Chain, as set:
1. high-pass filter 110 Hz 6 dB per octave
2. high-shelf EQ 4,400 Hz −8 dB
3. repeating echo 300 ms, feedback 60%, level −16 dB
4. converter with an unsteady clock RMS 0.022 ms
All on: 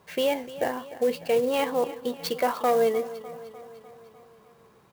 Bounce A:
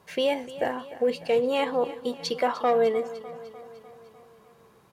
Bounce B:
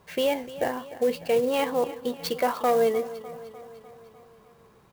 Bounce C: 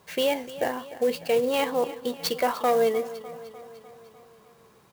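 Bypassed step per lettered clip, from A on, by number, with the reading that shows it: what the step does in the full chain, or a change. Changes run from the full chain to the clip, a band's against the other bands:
4, 8 kHz band −5.0 dB
1, 125 Hz band +1.5 dB
2, 4 kHz band +3.0 dB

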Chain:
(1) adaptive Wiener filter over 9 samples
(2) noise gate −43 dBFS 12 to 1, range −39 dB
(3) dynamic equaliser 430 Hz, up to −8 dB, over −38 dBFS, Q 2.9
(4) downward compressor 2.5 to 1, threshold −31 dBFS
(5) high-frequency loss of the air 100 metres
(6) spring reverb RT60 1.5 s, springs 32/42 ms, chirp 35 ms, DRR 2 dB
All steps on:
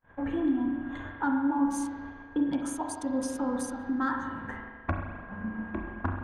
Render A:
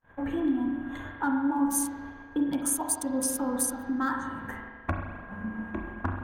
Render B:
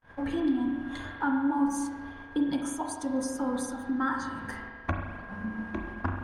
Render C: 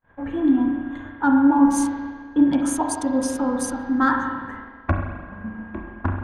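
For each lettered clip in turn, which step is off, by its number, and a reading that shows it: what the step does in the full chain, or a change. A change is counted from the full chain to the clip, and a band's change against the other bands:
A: 5, 8 kHz band +12.0 dB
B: 1, 4 kHz band +4.5 dB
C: 4, average gain reduction 6.0 dB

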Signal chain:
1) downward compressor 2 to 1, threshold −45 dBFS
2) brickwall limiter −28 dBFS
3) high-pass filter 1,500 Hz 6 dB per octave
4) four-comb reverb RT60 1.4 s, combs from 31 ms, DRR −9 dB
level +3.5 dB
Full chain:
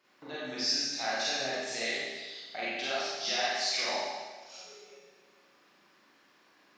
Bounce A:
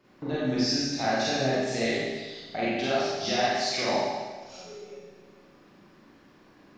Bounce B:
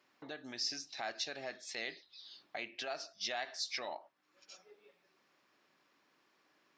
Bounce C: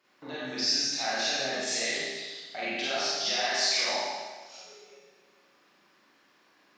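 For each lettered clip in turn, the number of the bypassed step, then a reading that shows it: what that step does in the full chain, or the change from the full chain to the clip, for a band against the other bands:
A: 3, 125 Hz band +16.5 dB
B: 4, change in crest factor +3.0 dB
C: 1, average gain reduction 12.5 dB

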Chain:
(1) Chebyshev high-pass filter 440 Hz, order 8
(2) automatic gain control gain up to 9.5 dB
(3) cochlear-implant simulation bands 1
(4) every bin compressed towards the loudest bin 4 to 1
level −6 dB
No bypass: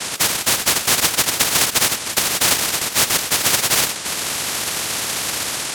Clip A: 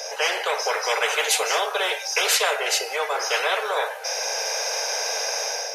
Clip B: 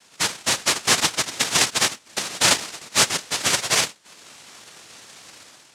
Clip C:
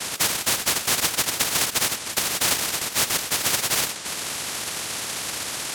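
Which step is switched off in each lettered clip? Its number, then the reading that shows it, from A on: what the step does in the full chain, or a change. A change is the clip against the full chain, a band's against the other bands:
3, 8 kHz band −8.5 dB
4, 8 kHz band −2.0 dB
2, change in integrated loudness −5.5 LU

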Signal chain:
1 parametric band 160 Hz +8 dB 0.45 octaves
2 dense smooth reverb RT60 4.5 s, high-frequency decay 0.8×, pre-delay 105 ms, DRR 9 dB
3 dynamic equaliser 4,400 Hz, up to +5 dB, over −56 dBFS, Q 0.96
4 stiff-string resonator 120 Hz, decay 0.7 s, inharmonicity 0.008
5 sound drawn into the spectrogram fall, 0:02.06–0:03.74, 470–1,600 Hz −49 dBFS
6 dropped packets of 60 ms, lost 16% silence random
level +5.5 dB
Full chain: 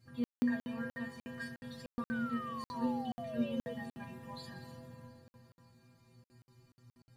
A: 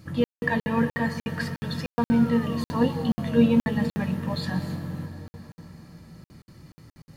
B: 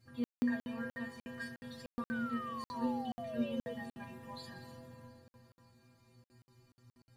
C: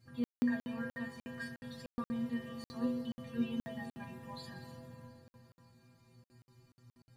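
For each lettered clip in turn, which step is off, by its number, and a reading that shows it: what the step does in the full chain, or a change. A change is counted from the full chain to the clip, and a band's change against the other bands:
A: 4, 125 Hz band +6.5 dB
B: 1, 125 Hz band −3.0 dB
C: 5, 1 kHz band −7.0 dB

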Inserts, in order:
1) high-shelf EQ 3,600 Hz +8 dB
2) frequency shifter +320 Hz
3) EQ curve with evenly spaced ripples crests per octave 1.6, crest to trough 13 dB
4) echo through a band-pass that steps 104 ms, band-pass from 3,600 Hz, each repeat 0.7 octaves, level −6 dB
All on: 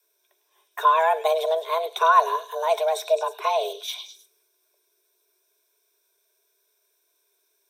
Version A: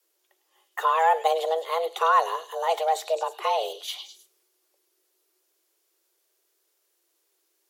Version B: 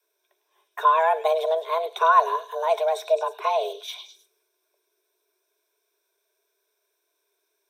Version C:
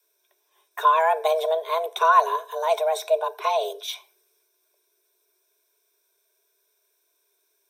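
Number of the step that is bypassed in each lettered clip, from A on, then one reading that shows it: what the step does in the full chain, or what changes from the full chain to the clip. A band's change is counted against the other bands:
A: 3, change in integrated loudness −2.5 LU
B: 1, 8 kHz band −5.5 dB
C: 4, echo-to-direct ratio −14.5 dB to none audible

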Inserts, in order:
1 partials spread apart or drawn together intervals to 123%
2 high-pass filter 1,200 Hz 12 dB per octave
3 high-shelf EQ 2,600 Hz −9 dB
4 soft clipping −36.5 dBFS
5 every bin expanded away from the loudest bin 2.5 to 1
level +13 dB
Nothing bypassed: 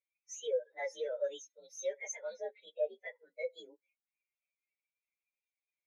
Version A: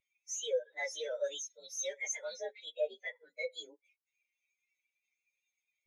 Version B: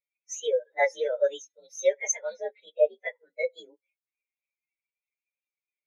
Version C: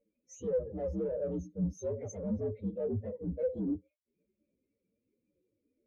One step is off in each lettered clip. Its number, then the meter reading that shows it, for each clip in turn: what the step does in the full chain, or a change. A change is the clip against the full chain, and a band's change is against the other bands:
3, change in momentary loudness spread −5 LU
4, distortion level −11 dB
2, change in crest factor −5.0 dB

